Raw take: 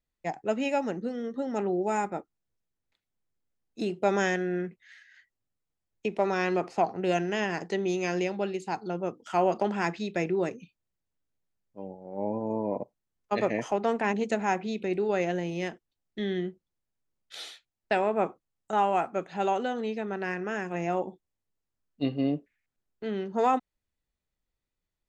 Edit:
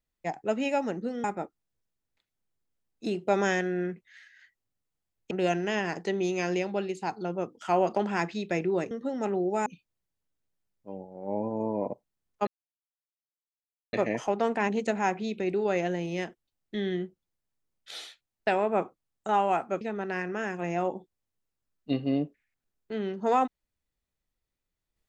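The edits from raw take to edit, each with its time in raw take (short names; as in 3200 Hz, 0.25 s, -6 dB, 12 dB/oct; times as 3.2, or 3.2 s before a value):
1.24–1.99 move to 10.56
6.06–6.96 cut
13.37 insert silence 1.46 s
19.25–19.93 cut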